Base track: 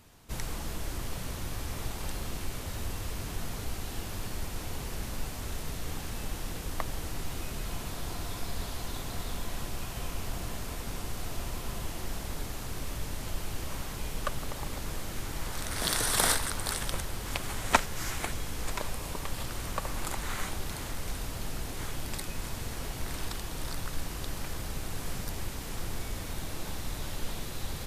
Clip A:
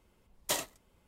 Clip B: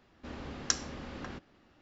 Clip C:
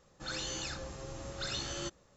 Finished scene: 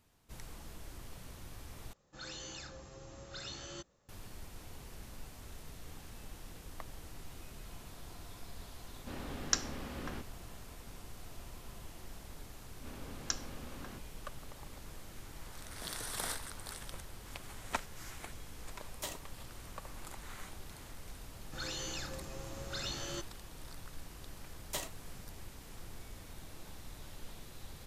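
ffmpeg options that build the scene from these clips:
-filter_complex "[3:a]asplit=2[a][b];[2:a]asplit=2[c][d];[1:a]asplit=2[e][f];[0:a]volume=-13dB[g];[d]bandreject=f=1.9k:w=13[h];[g]asplit=2[i][j];[i]atrim=end=1.934[k];[a]atrim=end=2.16,asetpts=PTS-STARTPTS,volume=-7.5dB[l];[j]atrim=start=4.086[m];[c]atrim=end=1.81,asetpts=PTS-STARTPTS,volume=-1dB,afade=t=in:d=0.004:c=hsin,afade=t=out:st=1.806:d=0.004:c=hsin,adelay=8830[n];[h]atrim=end=1.81,asetpts=PTS-STARTPTS,volume=-6.5dB,afade=t=in:d=0.004:c=hsin,afade=t=out:st=1.806:d=0.004:c=hsin,adelay=12600[o];[e]atrim=end=1.07,asetpts=PTS-STARTPTS,volume=-10dB,afade=t=in:d=0.004:c=hsin,afade=t=out:st=1.066:d=0.004:c=hsin,adelay=18530[p];[b]atrim=end=2.16,asetpts=PTS-STARTPTS,volume=-2.5dB,afade=t=in:d=0.004:c=hsin,afade=t=out:st=2.156:d=0.004:c=hsin,adelay=940212S[q];[f]atrim=end=1.07,asetpts=PTS-STARTPTS,volume=-7.5dB,afade=t=in:d=0.004:c=hsin,afade=t=out:st=1.066:d=0.004:c=hsin,adelay=24240[r];[k][l]acrossfade=d=0.004:c1=hsin:c2=hsin[s];[s][m]acrossfade=d=0.004:c1=hsin:c2=hsin[t];[t][n][o][p][q][r]amix=inputs=6:normalize=0"

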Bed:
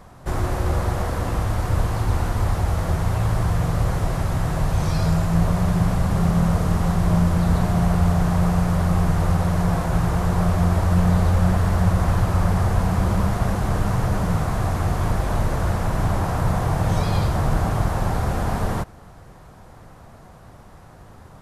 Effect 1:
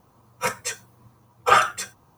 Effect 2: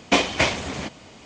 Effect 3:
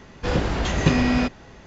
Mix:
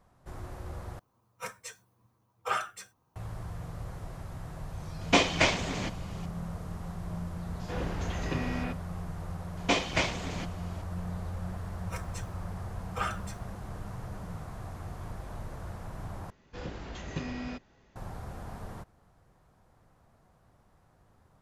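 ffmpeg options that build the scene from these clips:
-filter_complex "[1:a]asplit=2[a][b];[2:a]asplit=2[c][d];[3:a]asplit=2[e][f];[0:a]volume=-19dB[g];[e]acrossover=split=170|4000[h][i][j];[i]adelay=90[k];[h]adelay=120[l];[l][k][j]amix=inputs=3:normalize=0[m];[g]asplit=3[n][o][p];[n]atrim=end=0.994[q];[a]atrim=end=2.17,asetpts=PTS-STARTPTS,volume=-14.5dB[r];[o]atrim=start=3.156:end=16.304[s];[f]atrim=end=1.66,asetpts=PTS-STARTPTS,volume=-17.5dB[t];[p]atrim=start=17.956[u];[c]atrim=end=1.25,asetpts=PTS-STARTPTS,volume=-4dB,afade=t=in:d=0.004:c=hsin,afade=t=out:st=1.246:d=0.004:c=hsin,adelay=220941S[v];[m]atrim=end=1.66,asetpts=PTS-STARTPTS,volume=-12dB,afade=t=in:d=0.004:c=hsin,afade=t=out:st=1.656:d=0.004:c=hsin,adelay=7360[w];[d]atrim=end=1.25,asetpts=PTS-STARTPTS,volume=-8dB,afade=t=in:d=0.004:c=hsin,afade=t=out:st=1.246:d=0.004:c=hsin,adelay=9570[x];[b]atrim=end=2.17,asetpts=PTS-STARTPTS,volume=-17dB,afade=t=in:d=0.004:c=hsin,afade=t=out:st=2.166:d=0.004:c=hsin,adelay=11490[y];[q][r]acrossfade=d=0.004:c1=hsin:c2=hsin[z];[z][s]acrossfade=d=0.004:c1=hsin:c2=hsin[aa];[aa][t]acrossfade=d=0.004:c1=hsin:c2=hsin[ab];[ab][u]acrossfade=d=0.004:c1=hsin:c2=hsin[ac];[ac][v][w][x][y]amix=inputs=5:normalize=0"

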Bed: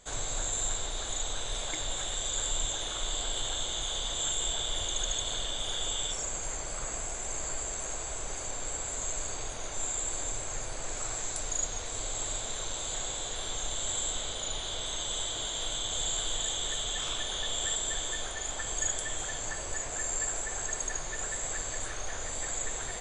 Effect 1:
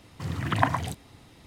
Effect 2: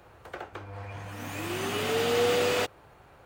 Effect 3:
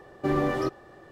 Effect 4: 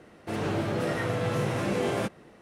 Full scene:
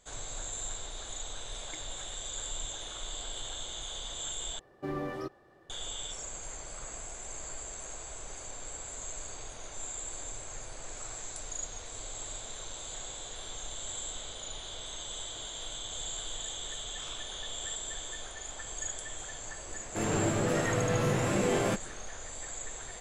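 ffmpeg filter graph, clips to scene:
-filter_complex "[0:a]volume=-6.5dB,asplit=2[a][b];[a]atrim=end=4.594[c];[3:a]atrim=end=1.11,asetpts=PTS-STARTPTS,volume=-10.5dB[d];[b]atrim=start=5.696[e];[4:a]atrim=end=2.41,asetpts=PTS-STARTPTS,volume=-0.5dB,afade=t=in:d=0.004:c=hsin,afade=t=out:st=2.406:d=0.004:c=hsin,adelay=19680[f];[c][d]acrossfade=d=0.004:c1=hsin:c2=hsin[g];[g][e]acrossfade=d=0.004:c1=hsin:c2=hsin[h];[h][f]amix=inputs=2:normalize=0"

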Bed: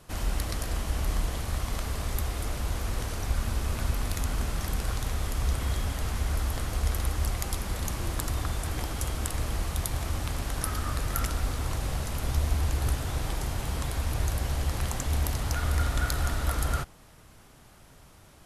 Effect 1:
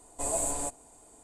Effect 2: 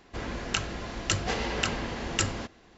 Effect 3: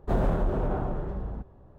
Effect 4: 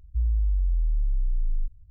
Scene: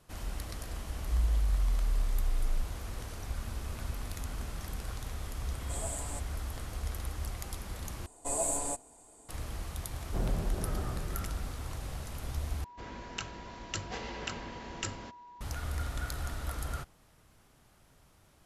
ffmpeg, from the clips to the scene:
-filter_complex "[1:a]asplit=2[a][b];[0:a]volume=-9dB[c];[4:a]crystalizer=i=2.5:c=0[d];[3:a]equalizer=f=960:w=0.32:g=-7[e];[2:a]aeval=exprs='val(0)+0.0112*sin(2*PI*970*n/s)':c=same[f];[c]asplit=3[g][h][i];[g]atrim=end=8.064[j];[b]atrim=end=1.23,asetpts=PTS-STARTPTS,volume=-1.5dB[k];[h]atrim=start=9.286:end=12.644[l];[f]atrim=end=2.77,asetpts=PTS-STARTPTS,volume=-10dB[m];[i]atrim=start=15.406[n];[d]atrim=end=1.9,asetpts=PTS-STARTPTS,volume=-5dB,afade=t=in:d=0.004:c=hsin,afade=t=out:st=1.896:d=0.004:c=hsin,adelay=960[o];[a]atrim=end=1.23,asetpts=PTS-STARTPTS,volume=-9.5dB,afade=t=in:d=0.004:c=hsin,afade=t=out:st=1.226:d=0.004:c=hsin,adelay=5500[p];[e]atrim=end=1.78,asetpts=PTS-STARTPTS,volume=-6dB,afade=t=in:d=0.004:c=hsin,afade=t=out:st=1.776:d=0.004:c=hsin,adelay=10050[q];[j][k]acrossfade=d=0.004:c1=hsin:c2=hsin[r];[r][l]acrossfade=d=0.004:c1=hsin:c2=hsin[s];[s][m]acrossfade=d=0.004:c1=hsin:c2=hsin[t];[t][n]acrossfade=d=0.004:c1=hsin:c2=hsin[u];[u][o][p][q]amix=inputs=4:normalize=0"

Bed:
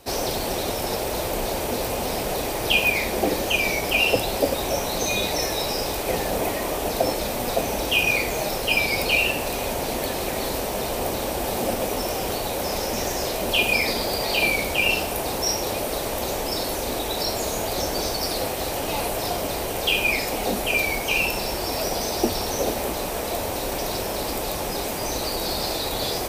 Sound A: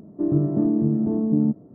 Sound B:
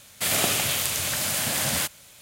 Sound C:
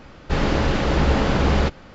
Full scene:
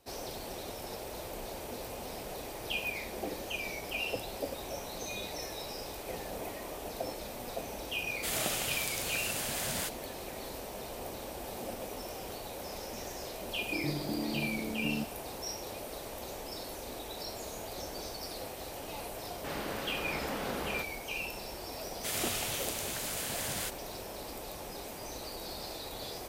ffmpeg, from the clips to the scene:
-filter_complex "[2:a]asplit=2[a][b];[0:a]volume=-15.5dB[c];[a]agate=range=-33dB:threshold=-47dB:ratio=3:release=100:detection=peak[d];[3:a]highpass=f=400:p=1[e];[d]atrim=end=2.21,asetpts=PTS-STARTPTS,volume=-10.5dB,afade=t=in:d=0.004:c=hsin,afade=t=out:st=2.206:d=0.004:c=hsin,adelay=353682S[f];[1:a]atrim=end=1.74,asetpts=PTS-STARTPTS,volume=-15.5dB,afade=t=in:d=0.004:c=hsin,afade=t=out:st=1.736:d=0.004:c=hsin,adelay=13520[g];[e]atrim=end=1.94,asetpts=PTS-STARTPTS,volume=-14dB,afade=t=in:d=0.004:c=hsin,afade=t=out:st=1.936:d=0.004:c=hsin,adelay=19140[h];[b]atrim=end=2.21,asetpts=PTS-STARTPTS,volume=-11.5dB,afade=t=in:d=0.004:c=hsin,afade=t=out:st=2.206:d=0.004:c=hsin,adelay=21830[i];[c][f][g][h][i]amix=inputs=5:normalize=0"

